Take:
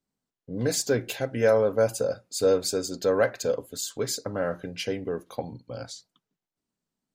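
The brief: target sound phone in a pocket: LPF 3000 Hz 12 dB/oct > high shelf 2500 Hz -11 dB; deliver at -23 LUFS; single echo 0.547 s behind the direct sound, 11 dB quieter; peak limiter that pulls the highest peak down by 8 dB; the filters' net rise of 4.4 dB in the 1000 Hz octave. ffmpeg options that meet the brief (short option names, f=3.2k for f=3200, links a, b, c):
-af "equalizer=f=1k:t=o:g=8.5,alimiter=limit=-14.5dB:level=0:latency=1,lowpass=3k,highshelf=f=2.5k:g=-11,aecho=1:1:547:0.282,volume=5.5dB"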